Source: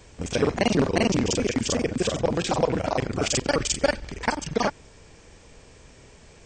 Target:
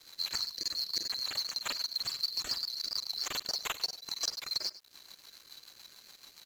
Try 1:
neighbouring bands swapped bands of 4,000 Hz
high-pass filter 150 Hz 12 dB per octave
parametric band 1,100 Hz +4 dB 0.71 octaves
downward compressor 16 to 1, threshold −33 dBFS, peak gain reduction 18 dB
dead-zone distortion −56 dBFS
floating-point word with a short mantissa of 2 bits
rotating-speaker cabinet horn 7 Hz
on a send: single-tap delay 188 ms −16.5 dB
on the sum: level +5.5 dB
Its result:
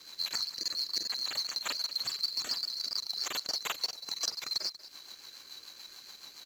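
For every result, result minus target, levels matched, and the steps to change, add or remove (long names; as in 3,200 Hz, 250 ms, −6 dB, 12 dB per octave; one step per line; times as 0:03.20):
echo 88 ms late; 125 Hz band −4.5 dB; dead-zone distortion: distortion −6 dB
change: single-tap delay 100 ms −16.5 dB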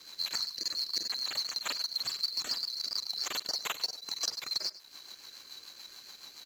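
125 Hz band −4.5 dB; dead-zone distortion: distortion −6 dB
remove: high-pass filter 150 Hz 12 dB per octave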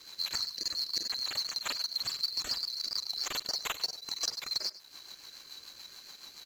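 dead-zone distortion: distortion −6 dB
change: dead-zone distortion −49.5 dBFS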